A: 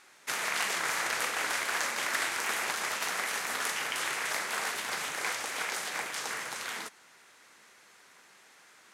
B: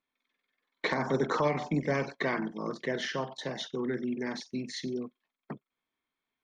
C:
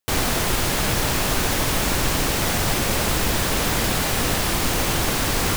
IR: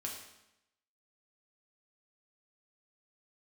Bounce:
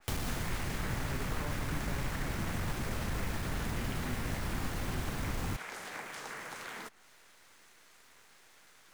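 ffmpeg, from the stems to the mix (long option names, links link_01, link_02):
-filter_complex "[0:a]volume=1dB[link_01];[1:a]volume=-4.5dB[link_02];[2:a]aeval=exprs='clip(val(0),-1,0.1)':channel_layout=same,volume=-4dB[link_03];[link_01][link_02][link_03]amix=inputs=3:normalize=0,acrusher=bits=8:dc=4:mix=0:aa=0.000001,acrossover=split=250|640[link_04][link_05][link_06];[link_04]acompressor=threshold=-33dB:ratio=4[link_07];[link_05]acompressor=threshold=-52dB:ratio=4[link_08];[link_06]acompressor=threshold=-40dB:ratio=4[link_09];[link_07][link_08][link_09]amix=inputs=3:normalize=0,adynamicequalizer=threshold=0.002:dfrequency=2600:dqfactor=0.7:tfrequency=2600:tqfactor=0.7:attack=5:release=100:ratio=0.375:range=3:mode=cutabove:tftype=highshelf"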